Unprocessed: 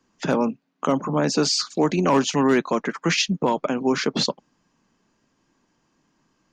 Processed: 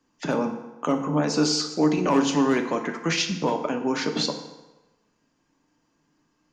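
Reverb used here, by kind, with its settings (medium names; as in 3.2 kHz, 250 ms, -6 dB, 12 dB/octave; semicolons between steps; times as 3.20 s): FDN reverb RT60 1.1 s, low-frequency decay 0.85×, high-frequency decay 0.75×, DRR 4.5 dB; trim -4 dB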